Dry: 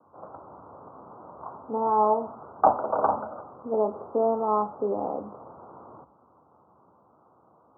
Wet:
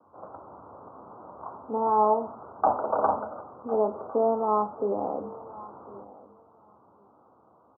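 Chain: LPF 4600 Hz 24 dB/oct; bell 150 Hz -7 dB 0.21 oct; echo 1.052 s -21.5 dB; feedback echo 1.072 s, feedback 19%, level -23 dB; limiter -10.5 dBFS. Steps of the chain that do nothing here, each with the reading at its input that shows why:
LPF 4600 Hz: input band ends at 1500 Hz

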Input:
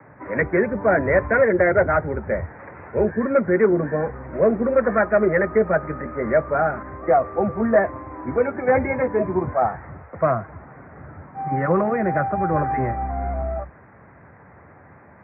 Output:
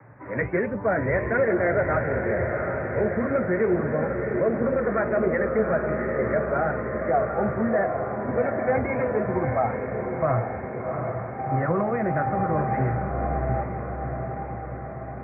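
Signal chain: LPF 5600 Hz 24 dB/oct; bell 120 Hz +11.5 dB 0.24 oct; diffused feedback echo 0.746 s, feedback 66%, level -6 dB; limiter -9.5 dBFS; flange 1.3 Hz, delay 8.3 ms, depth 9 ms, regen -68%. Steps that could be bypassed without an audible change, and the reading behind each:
LPF 5600 Hz: input band ends at 2300 Hz

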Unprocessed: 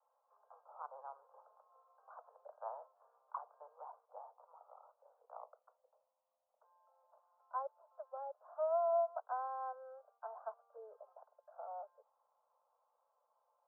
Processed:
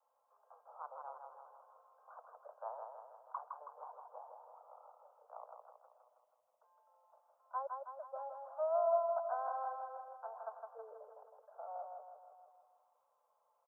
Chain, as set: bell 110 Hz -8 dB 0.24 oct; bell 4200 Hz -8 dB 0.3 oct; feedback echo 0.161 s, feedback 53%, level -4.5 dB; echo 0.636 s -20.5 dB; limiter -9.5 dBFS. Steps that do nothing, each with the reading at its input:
bell 110 Hz: input band starts at 430 Hz; bell 4200 Hz: input band ends at 1400 Hz; limiter -9.5 dBFS: input peak -23.0 dBFS

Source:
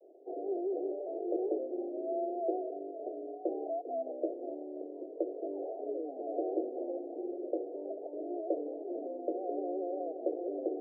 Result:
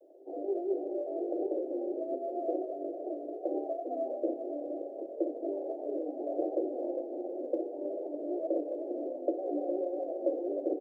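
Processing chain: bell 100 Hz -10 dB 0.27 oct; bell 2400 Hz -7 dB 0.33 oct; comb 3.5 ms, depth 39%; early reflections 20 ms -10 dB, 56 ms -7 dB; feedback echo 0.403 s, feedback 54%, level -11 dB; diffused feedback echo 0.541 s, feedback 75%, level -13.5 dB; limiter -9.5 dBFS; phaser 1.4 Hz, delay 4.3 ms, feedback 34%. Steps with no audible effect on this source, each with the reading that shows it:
bell 100 Hz: input band starts at 240 Hz; bell 2400 Hz: input band ends at 810 Hz; limiter -9.5 dBFS: input peak -18.0 dBFS

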